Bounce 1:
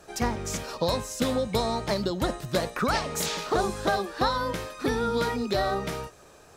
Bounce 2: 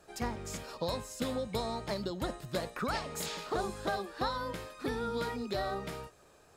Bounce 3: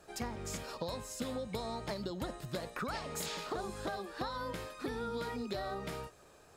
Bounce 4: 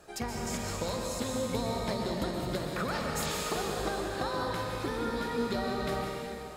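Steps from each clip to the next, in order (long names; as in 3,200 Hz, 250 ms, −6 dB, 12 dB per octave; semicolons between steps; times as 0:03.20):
notch filter 5,900 Hz, Q 11; level −8.5 dB
downward compressor, threshold −36 dBFS, peak gain reduction 8 dB; level +1 dB
dense smooth reverb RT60 2.7 s, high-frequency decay 0.95×, pre-delay 110 ms, DRR −0.5 dB; level +3.5 dB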